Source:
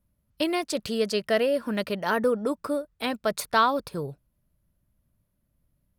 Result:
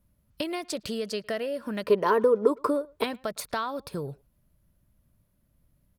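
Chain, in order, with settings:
downward compressor 4 to 1, threshold −35 dBFS, peak gain reduction 15.5 dB
0:01.85–0:03.04: hollow resonant body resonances 420/1,000 Hz, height 16 dB, ringing for 25 ms
far-end echo of a speakerphone 110 ms, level −25 dB
level +4.5 dB

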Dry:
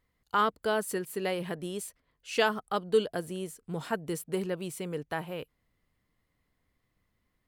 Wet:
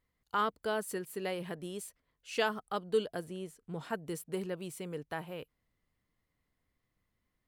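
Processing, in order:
0:03.24–0:03.90: high-shelf EQ 6,600 Hz −8.5 dB
level −5 dB

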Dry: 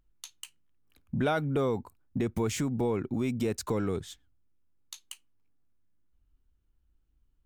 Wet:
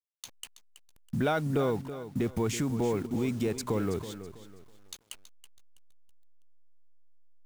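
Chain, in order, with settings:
hold until the input has moved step −46.5 dBFS
feedback echo at a low word length 326 ms, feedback 35%, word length 9 bits, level −12 dB

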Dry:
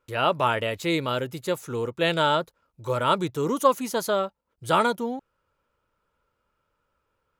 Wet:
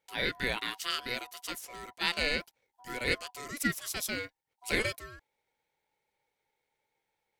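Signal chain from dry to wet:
guitar amp tone stack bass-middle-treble 10-0-10
ring modulation 860 Hz
level +3 dB

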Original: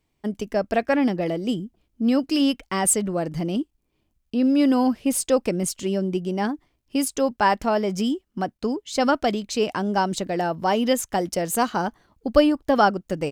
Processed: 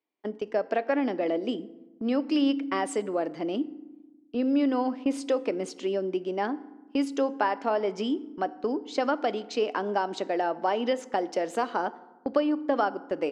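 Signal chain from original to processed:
high-pass filter 280 Hz 24 dB per octave
noise gate −38 dBFS, range −10 dB
parametric band 12,000 Hz −10 dB 1.7 octaves
downward compressor 4 to 1, threshold −22 dBFS, peak gain reduction 10 dB
high-frequency loss of the air 96 metres
feedback delay network reverb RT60 1.1 s, low-frequency decay 1.5×, high-frequency decay 0.55×, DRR 15 dB

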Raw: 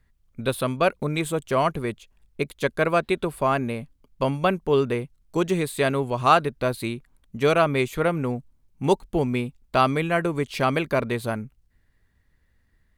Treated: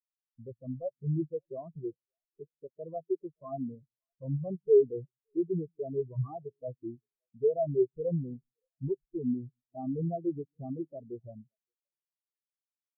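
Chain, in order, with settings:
variable-slope delta modulation 64 kbit/s
elliptic band-stop filter 1,100–7,200 Hz
in parallel at −1 dB: downward compressor, threshold −35 dBFS, peak gain reduction 18.5 dB
on the sum: parametric band 210 Hz −3.5 dB 0.31 octaves
hard clipping −23.5 dBFS, distortion −7 dB
high-frequency loss of the air 220 metres
echo with a time of its own for lows and highs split 330 Hz, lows 131 ms, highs 569 ms, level −14.5 dB
every bin expanded away from the loudest bin 4 to 1
level +6.5 dB

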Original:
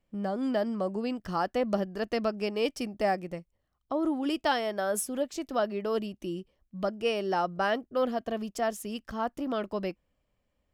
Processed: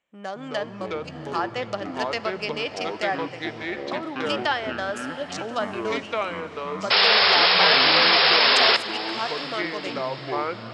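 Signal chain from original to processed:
adaptive Wiener filter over 9 samples
meter weighting curve ITU-R 468
treble cut that deepens with the level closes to 2,200 Hz, closed at −25.5 dBFS
0:00.69–0:01.32: output level in coarse steps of 17 dB
delay with pitch and tempo change per echo 183 ms, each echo −5 semitones, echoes 3
four-comb reverb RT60 3 s, combs from 32 ms, DRR 16 dB
0:06.90–0:08.77: sound drawn into the spectrogram noise 390–5,400 Hz −21 dBFS
feedback delay with all-pass diffusion 690 ms, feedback 44%, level −15 dB
level +3.5 dB

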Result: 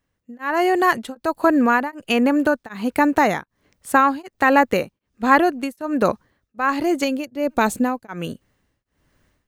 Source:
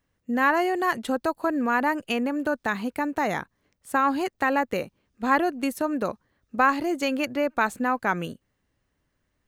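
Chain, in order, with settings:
0:07.04–0:08.09: parametric band 1,500 Hz −10.5 dB 1.8 octaves
automatic gain control gain up to 13 dB
tremolo along a rectified sine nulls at 1.3 Hz

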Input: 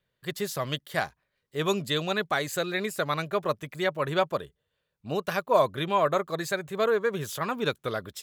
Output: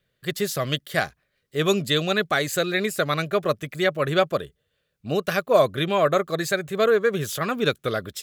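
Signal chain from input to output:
parametric band 930 Hz −12.5 dB 0.32 octaves
level +6 dB

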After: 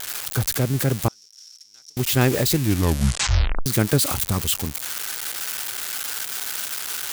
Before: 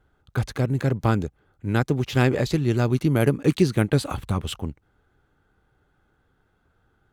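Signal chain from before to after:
spike at every zero crossing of −15 dBFS
0:01.08–0:01.97: resonant band-pass 5,500 Hz, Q 16
0:02.55: tape stop 1.11 s
level +1 dB

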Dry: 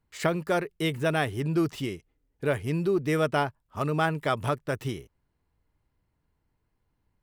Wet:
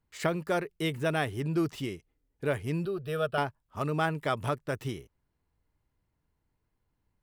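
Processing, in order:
0:02.85–0:03.38: phaser with its sweep stopped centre 1,400 Hz, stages 8
level −3 dB

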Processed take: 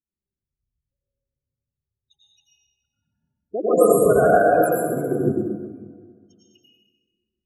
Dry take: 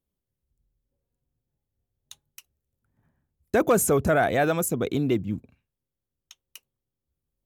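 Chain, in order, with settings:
low-shelf EQ 160 Hz −9 dB
spectral peaks only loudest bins 8
dense smooth reverb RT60 2 s, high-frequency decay 0.55×, pre-delay 80 ms, DRR −7.5 dB
expander for the loud parts 1.5 to 1, over −29 dBFS
level +1.5 dB

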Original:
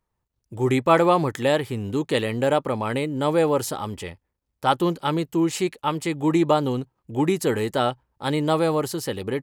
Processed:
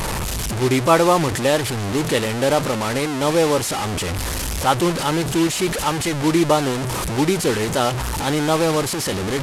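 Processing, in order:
linear delta modulator 64 kbit/s, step −20 dBFS
level +2.5 dB

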